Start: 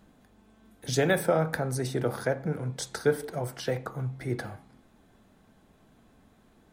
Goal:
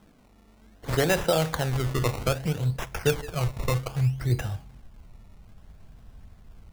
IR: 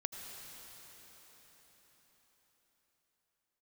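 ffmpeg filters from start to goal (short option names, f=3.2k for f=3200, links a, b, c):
-af "acrusher=samples=19:mix=1:aa=0.000001:lfo=1:lforange=19:lforate=0.62,asubboost=boost=11:cutoff=86,volume=2dB"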